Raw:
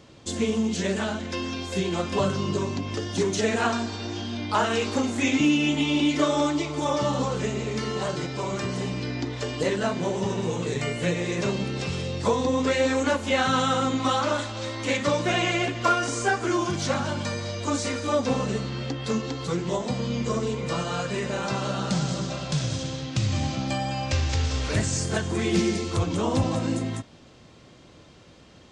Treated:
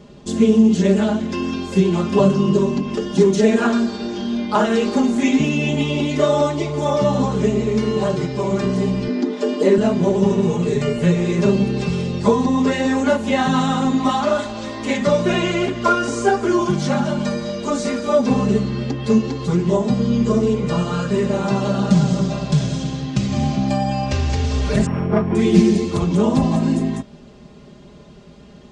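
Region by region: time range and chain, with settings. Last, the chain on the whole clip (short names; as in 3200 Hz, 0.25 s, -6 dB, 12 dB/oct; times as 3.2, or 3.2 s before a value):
9.08–9.78 elliptic high-pass 210 Hz + low shelf 290 Hz +9 dB
24.86–25.35 sample sorter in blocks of 16 samples + LPF 1800 Hz + bell 970 Hz +6.5 dB 1.6 oct
whole clip: tilt shelf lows +5.5 dB, about 720 Hz; comb 4.9 ms, depth 94%; gain +3 dB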